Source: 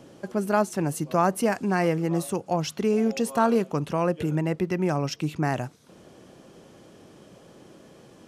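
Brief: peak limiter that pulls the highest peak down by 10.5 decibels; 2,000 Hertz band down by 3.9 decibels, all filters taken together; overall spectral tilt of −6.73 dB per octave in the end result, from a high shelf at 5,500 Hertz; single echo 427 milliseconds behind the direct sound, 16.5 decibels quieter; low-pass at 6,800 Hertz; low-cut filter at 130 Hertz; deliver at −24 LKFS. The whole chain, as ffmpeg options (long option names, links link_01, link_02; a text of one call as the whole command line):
ffmpeg -i in.wav -af "highpass=130,lowpass=6800,equalizer=frequency=2000:width_type=o:gain=-4.5,highshelf=frequency=5500:gain=-6,alimiter=limit=-20dB:level=0:latency=1,aecho=1:1:427:0.15,volume=6.5dB" out.wav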